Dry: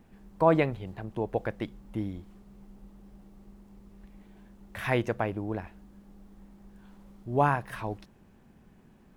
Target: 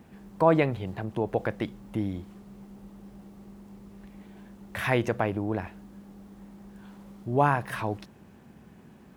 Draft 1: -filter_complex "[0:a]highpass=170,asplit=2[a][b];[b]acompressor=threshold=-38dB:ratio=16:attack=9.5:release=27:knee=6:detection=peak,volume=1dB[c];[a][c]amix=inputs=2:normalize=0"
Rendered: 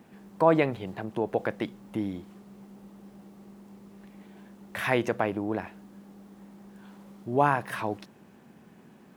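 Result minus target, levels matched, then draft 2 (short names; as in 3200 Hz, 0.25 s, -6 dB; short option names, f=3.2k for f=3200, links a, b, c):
125 Hz band -4.5 dB
-filter_complex "[0:a]highpass=72,asplit=2[a][b];[b]acompressor=threshold=-38dB:ratio=16:attack=9.5:release=27:knee=6:detection=peak,volume=1dB[c];[a][c]amix=inputs=2:normalize=0"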